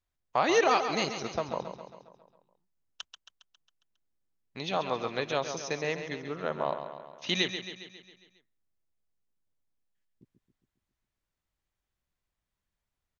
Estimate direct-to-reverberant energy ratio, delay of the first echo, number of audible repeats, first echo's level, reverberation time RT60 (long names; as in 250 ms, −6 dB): no reverb audible, 136 ms, 6, −9.0 dB, no reverb audible